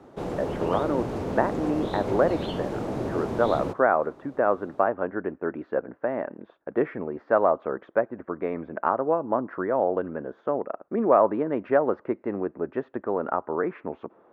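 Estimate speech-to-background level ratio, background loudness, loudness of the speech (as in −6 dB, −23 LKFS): 4.0 dB, −31.0 LKFS, −27.0 LKFS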